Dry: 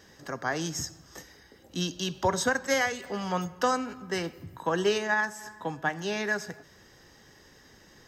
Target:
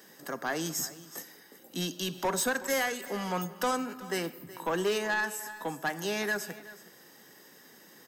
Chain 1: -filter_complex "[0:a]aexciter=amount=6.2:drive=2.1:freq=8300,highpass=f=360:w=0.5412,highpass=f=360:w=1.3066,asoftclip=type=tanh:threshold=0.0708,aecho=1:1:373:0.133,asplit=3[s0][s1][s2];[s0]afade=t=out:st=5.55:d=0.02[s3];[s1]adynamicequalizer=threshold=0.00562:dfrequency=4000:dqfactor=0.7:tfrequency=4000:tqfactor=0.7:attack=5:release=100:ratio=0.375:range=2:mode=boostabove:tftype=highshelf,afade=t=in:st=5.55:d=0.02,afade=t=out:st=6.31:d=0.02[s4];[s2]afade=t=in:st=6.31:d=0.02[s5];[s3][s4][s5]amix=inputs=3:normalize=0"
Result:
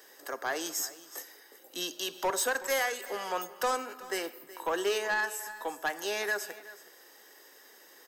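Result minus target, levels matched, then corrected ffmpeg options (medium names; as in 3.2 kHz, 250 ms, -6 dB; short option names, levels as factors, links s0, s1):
125 Hz band -18.5 dB
-filter_complex "[0:a]aexciter=amount=6.2:drive=2.1:freq=8300,highpass=f=170:w=0.5412,highpass=f=170:w=1.3066,asoftclip=type=tanh:threshold=0.0708,aecho=1:1:373:0.133,asplit=3[s0][s1][s2];[s0]afade=t=out:st=5.55:d=0.02[s3];[s1]adynamicequalizer=threshold=0.00562:dfrequency=4000:dqfactor=0.7:tfrequency=4000:tqfactor=0.7:attack=5:release=100:ratio=0.375:range=2:mode=boostabove:tftype=highshelf,afade=t=in:st=5.55:d=0.02,afade=t=out:st=6.31:d=0.02[s4];[s2]afade=t=in:st=6.31:d=0.02[s5];[s3][s4][s5]amix=inputs=3:normalize=0"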